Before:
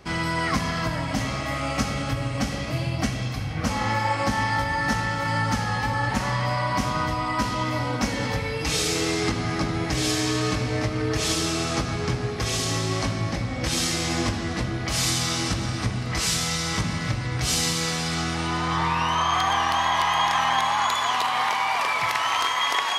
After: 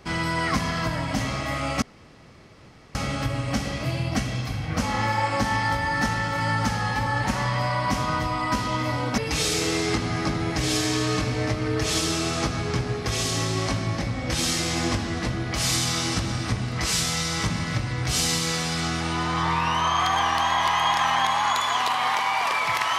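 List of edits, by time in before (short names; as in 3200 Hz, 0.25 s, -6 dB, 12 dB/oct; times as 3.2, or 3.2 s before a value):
1.82 insert room tone 1.13 s
8.05–8.52 cut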